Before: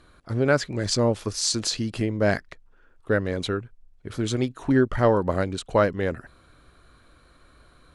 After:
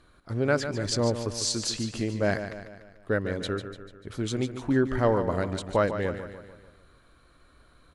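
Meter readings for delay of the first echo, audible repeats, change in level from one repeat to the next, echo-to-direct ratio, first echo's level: 147 ms, 5, −6.0 dB, −8.5 dB, −10.0 dB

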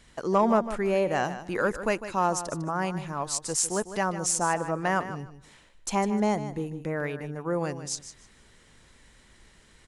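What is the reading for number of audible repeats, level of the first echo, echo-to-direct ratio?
2, −12.0 dB, −12.0 dB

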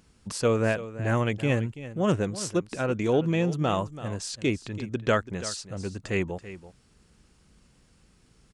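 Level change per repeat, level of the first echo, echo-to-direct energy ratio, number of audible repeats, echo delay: repeats not evenly spaced, −14.5 dB, −14.5 dB, 1, 333 ms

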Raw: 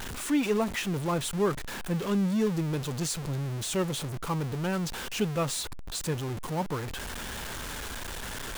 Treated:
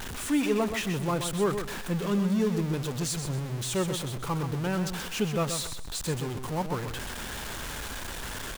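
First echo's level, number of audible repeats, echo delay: −8.0 dB, 3, 128 ms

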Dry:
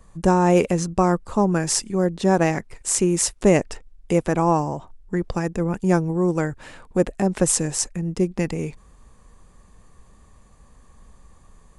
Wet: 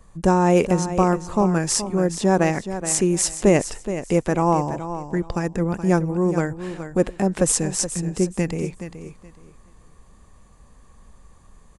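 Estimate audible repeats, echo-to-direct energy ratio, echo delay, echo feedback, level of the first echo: 2, −11.0 dB, 423 ms, 22%, −11.0 dB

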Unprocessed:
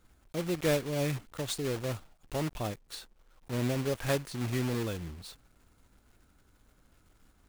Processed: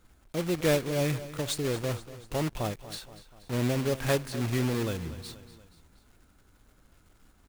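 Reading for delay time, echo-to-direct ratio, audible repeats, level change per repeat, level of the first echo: 239 ms, −14.0 dB, 3, −5.0 dB, −15.5 dB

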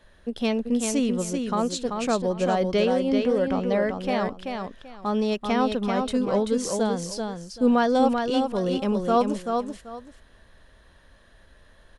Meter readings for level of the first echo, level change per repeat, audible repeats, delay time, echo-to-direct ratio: −5.0 dB, −13.0 dB, 2, 386 ms, −5.0 dB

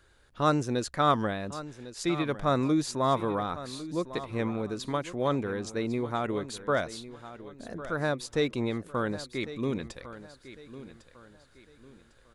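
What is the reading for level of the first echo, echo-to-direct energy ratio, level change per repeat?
−14.5 dB, −14.0 dB, −9.5 dB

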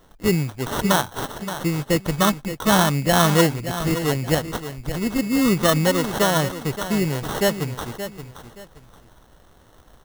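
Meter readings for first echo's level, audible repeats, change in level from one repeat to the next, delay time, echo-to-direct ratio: −11.0 dB, 2, −11.5 dB, 574 ms, −10.5 dB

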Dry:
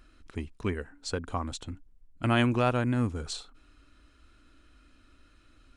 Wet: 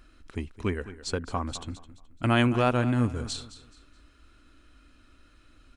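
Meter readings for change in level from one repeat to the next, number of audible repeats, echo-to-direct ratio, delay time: −10.0 dB, 2, −14.5 dB, 213 ms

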